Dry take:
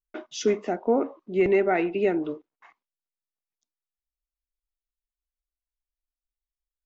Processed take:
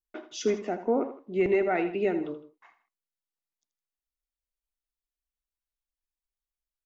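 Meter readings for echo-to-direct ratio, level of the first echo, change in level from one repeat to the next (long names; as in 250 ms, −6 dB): −11.5 dB, −12.0 dB, −7.5 dB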